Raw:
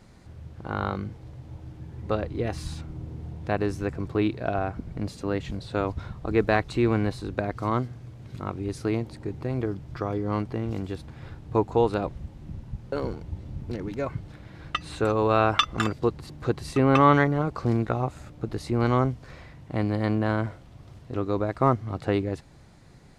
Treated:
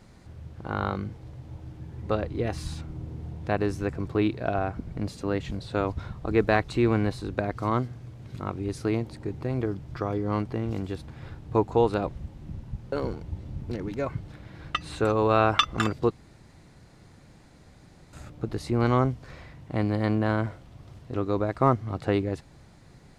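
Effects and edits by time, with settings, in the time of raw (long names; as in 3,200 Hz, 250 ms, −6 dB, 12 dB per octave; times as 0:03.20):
0:16.11–0:18.13: fill with room tone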